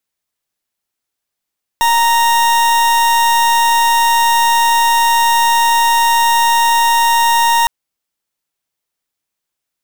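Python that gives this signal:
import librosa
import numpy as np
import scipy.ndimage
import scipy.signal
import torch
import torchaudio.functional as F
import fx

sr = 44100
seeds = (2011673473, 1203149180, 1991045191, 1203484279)

y = fx.pulse(sr, length_s=5.86, hz=931.0, level_db=-11.5, duty_pct=40)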